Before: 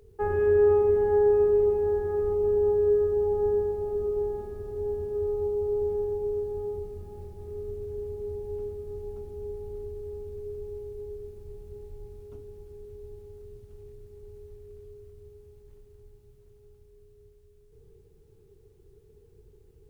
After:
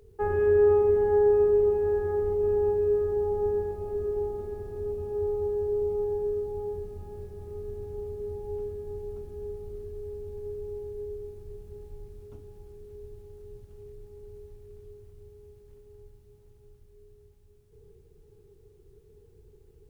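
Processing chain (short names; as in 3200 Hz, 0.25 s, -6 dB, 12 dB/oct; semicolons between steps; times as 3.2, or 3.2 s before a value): diffused feedback echo 1.795 s, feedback 54%, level -15 dB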